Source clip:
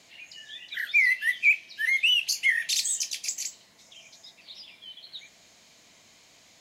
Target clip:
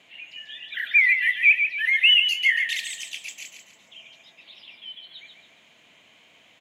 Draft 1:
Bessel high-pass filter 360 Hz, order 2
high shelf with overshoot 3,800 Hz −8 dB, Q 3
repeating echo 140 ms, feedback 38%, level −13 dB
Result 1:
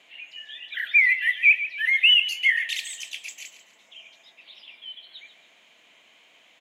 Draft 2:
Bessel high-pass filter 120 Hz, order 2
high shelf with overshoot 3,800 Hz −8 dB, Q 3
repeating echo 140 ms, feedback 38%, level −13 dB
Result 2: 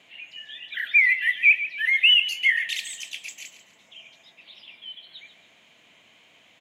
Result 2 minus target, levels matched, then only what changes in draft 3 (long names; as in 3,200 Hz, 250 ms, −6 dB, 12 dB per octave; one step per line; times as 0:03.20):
echo-to-direct −6 dB
change: repeating echo 140 ms, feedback 38%, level −7 dB